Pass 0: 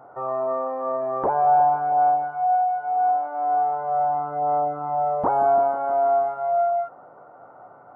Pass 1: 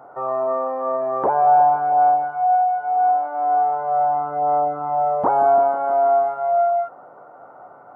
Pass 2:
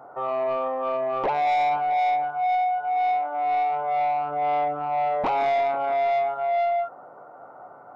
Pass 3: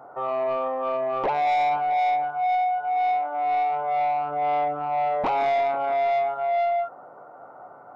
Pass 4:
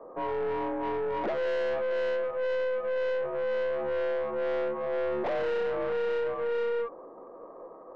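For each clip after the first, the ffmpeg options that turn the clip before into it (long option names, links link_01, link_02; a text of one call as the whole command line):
ffmpeg -i in.wav -af "highpass=frequency=170:poles=1,volume=3.5dB" out.wav
ffmpeg -i in.wav -af "asoftclip=type=tanh:threshold=-18dB,volume=-1.5dB" out.wav
ffmpeg -i in.wav -af anull out.wav
ffmpeg -i in.wav -af "highpass=frequency=510:width_type=q:width=0.5412,highpass=frequency=510:width_type=q:width=1.307,lowpass=frequency=2200:width_type=q:width=0.5176,lowpass=frequency=2200:width_type=q:width=0.7071,lowpass=frequency=2200:width_type=q:width=1.932,afreqshift=-220,aeval=exprs='(tanh(22.4*val(0)+0.3)-tanh(0.3))/22.4':channel_layout=same" out.wav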